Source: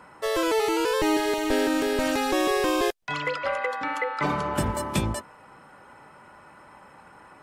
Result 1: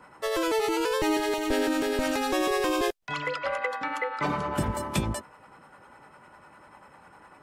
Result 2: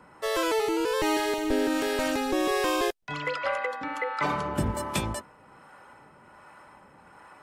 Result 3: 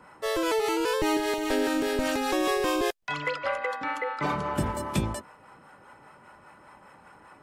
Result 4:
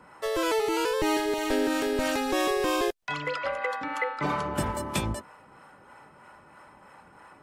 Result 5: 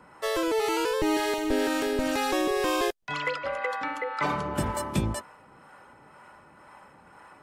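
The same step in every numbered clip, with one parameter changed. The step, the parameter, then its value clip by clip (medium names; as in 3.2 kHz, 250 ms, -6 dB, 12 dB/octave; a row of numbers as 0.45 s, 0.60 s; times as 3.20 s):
harmonic tremolo, rate: 10 Hz, 1.3 Hz, 5 Hz, 3.1 Hz, 2 Hz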